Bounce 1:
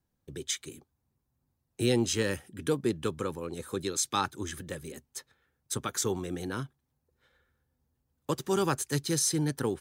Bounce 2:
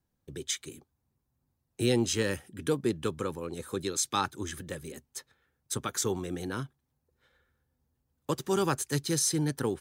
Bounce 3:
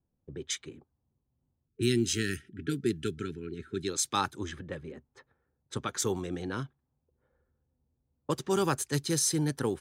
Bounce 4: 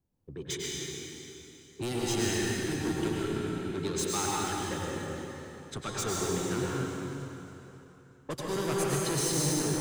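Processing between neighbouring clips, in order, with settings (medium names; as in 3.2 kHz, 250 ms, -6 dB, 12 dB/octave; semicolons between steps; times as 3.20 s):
no audible change
time-frequency box 1.68–3.88 s, 440–1300 Hz -26 dB; level-controlled noise filter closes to 750 Hz, open at -27 dBFS
saturation -30 dBFS, distortion -8 dB; plate-style reverb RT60 3.3 s, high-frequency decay 0.85×, pre-delay 85 ms, DRR -5 dB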